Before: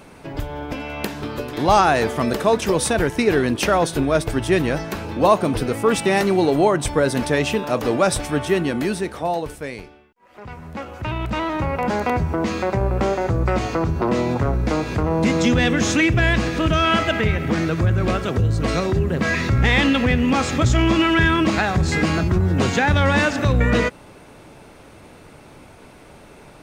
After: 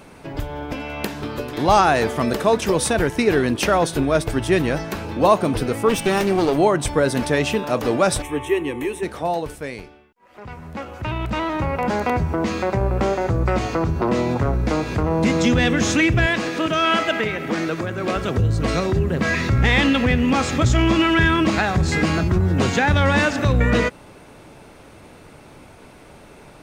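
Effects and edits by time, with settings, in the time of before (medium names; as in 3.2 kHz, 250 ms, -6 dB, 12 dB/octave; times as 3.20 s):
5.89–6.58 s: comb filter that takes the minimum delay 0.34 ms
8.22–9.03 s: static phaser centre 960 Hz, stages 8
16.26–18.16 s: high-pass 240 Hz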